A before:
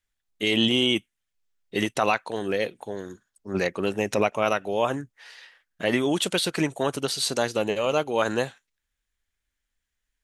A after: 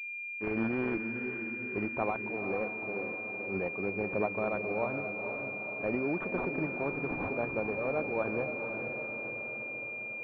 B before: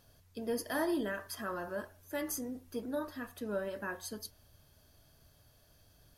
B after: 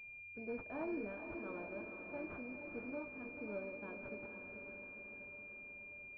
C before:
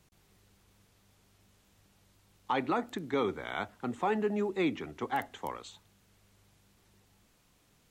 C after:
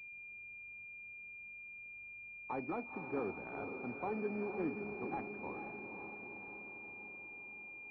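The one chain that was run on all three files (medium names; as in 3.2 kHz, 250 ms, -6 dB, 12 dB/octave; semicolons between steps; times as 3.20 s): echo that smears into a reverb 482 ms, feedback 63%, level -6.5 dB; class-D stage that switches slowly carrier 2.4 kHz; trim -8.5 dB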